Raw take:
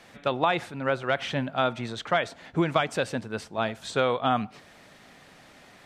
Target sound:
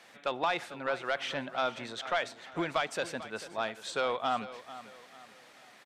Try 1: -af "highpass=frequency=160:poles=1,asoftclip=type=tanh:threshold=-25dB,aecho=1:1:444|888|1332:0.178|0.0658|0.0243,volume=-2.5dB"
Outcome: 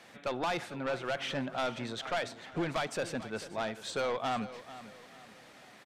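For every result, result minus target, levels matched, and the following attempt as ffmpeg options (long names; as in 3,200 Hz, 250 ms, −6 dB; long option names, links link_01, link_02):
125 Hz band +7.5 dB; soft clipping: distortion +9 dB
-af "highpass=frequency=550:poles=1,asoftclip=type=tanh:threshold=-25dB,aecho=1:1:444|888|1332:0.178|0.0658|0.0243,volume=-2.5dB"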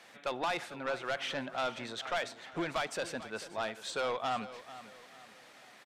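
soft clipping: distortion +8 dB
-af "highpass=frequency=550:poles=1,asoftclip=type=tanh:threshold=-17.5dB,aecho=1:1:444|888|1332:0.178|0.0658|0.0243,volume=-2.5dB"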